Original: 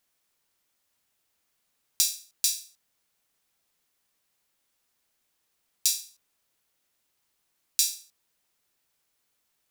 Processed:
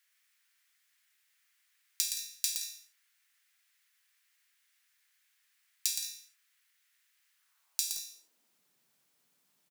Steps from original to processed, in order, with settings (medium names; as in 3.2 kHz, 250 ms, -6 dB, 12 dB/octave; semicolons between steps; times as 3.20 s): compression 10:1, threshold -28 dBFS, peak gain reduction 10.5 dB; high-pass sweep 1.8 kHz -> 170 Hz, 7.32–8.58 s; on a send: multi-tap echo 118/171/191 ms -6.5/-13.5/-18 dB